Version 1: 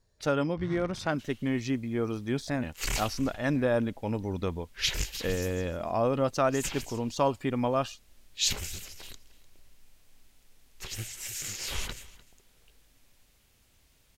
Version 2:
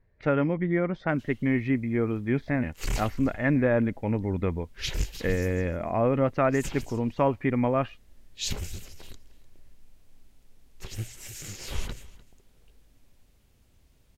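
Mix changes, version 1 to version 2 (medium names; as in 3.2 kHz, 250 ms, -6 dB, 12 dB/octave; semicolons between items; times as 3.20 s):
speech: add resonant low-pass 2.1 kHz, resonance Q 4.5; first sound: muted; master: add tilt shelf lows +5.5 dB, about 750 Hz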